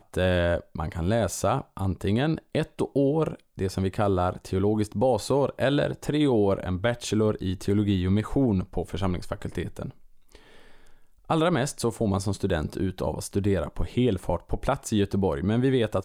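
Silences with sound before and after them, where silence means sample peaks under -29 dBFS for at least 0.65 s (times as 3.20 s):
9.89–11.30 s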